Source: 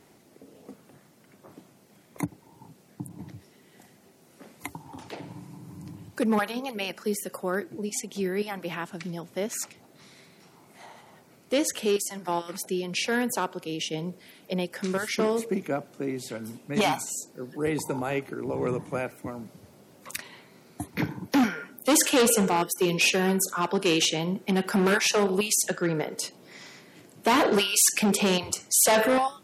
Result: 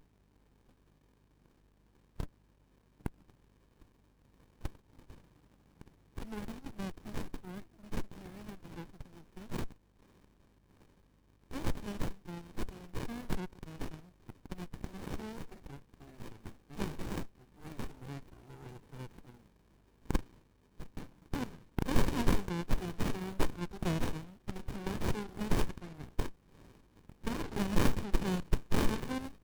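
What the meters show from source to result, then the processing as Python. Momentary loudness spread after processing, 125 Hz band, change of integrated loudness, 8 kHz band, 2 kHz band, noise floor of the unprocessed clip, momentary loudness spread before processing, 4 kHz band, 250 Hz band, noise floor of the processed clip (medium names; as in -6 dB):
18 LU, -4.5 dB, -13.5 dB, -24.5 dB, -16.0 dB, -58 dBFS, 20 LU, -18.0 dB, -10.5 dB, -68 dBFS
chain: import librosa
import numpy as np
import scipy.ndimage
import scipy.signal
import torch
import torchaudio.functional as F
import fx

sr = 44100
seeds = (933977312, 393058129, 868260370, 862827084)

y = fx.add_hum(x, sr, base_hz=50, snr_db=13)
y = scipy.signal.lfilter([1.0, -0.97], [1.0], y)
y = fx.running_max(y, sr, window=65)
y = F.gain(torch.from_numpy(y), 2.0).numpy()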